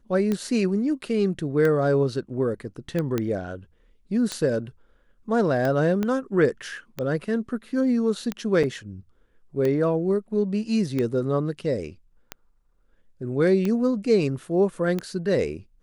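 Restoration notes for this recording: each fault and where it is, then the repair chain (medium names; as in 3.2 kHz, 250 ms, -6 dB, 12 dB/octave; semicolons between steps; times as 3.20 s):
tick 45 rpm -14 dBFS
3.18 s: pop -12 dBFS
6.03 s: pop -14 dBFS
8.63–8.64 s: dropout 6 ms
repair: de-click; interpolate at 8.63 s, 6 ms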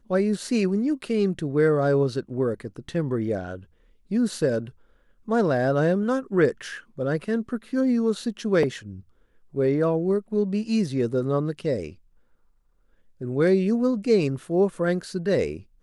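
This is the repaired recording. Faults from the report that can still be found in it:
6.03 s: pop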